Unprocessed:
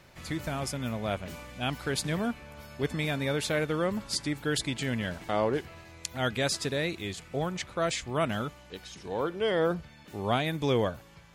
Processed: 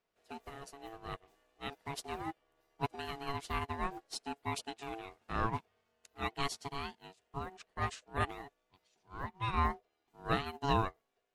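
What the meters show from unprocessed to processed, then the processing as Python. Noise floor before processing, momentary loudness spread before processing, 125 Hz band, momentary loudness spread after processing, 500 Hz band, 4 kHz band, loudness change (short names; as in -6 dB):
-53 dBFS, 10 LU, -8.5 dB, 16 LU, -13.5 dB, -10.5 dB, -8.0 dB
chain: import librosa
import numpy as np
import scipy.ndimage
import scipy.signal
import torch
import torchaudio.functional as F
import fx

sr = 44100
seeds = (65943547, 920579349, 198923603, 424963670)

y = x * np.sin(2.0 * np.pi * 560.0 * np.arange(len(x)) / sr)
y = fx.upward_expand(y, sr, threshold_db=-44.0, expansion=2.5)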